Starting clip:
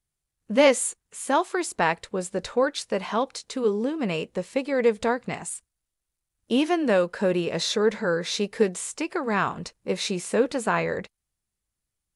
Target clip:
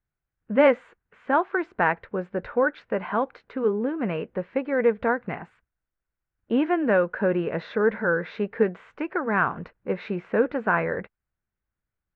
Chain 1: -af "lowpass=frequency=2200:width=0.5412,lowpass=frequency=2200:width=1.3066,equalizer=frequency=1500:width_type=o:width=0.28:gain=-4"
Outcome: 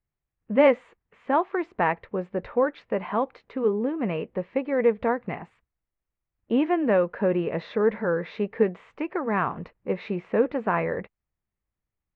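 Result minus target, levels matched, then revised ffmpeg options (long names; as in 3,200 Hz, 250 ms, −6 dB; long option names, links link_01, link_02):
2,000 Hz band −5.0 dB
-af "lowpass=frequency=2200:width=0.5412,lowpass=frequency=2200:width=1.3066,equalizer=frequency=1500:width_type=o:width=0.28:gain=6.5"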